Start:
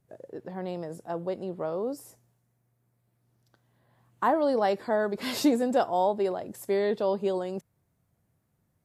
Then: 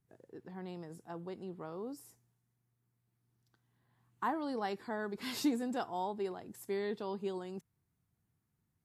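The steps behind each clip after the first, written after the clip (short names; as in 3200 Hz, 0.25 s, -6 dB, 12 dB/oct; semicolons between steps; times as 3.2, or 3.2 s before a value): bell 580 Hz -13 dB 0.48 oct; gain -7.5 dB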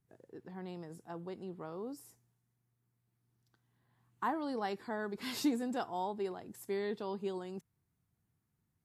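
nothing audible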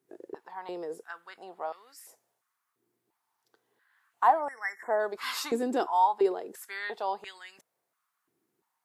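spectral delete 4.39–5, 2200–5200 Hz; stepped high-pass 2.9 Hz 350–1900 Hz; gain +5.5 dB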